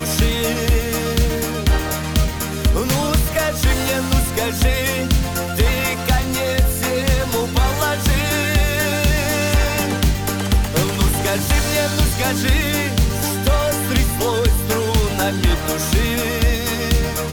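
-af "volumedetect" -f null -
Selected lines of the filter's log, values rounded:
mean_volume: -17.5 dB
max_volume: -6.5 dB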